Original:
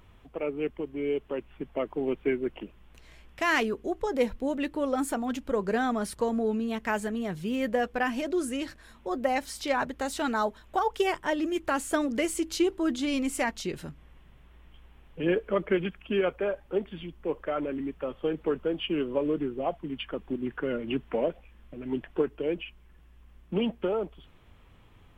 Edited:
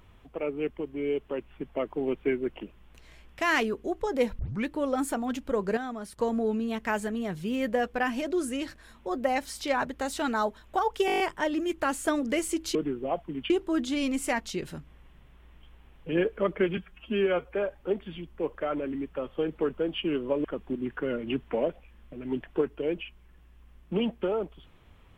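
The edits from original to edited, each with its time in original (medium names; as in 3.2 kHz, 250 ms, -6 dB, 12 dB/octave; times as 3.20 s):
4.39 s: tape start 0.27 s
5.77–6.18 s: gain -8 dB
11.06 s: stutter 0.02 s, 8 plays
15.88–16.39 s: stretch 1.5×
19.30–20.05 s: move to 12.61 s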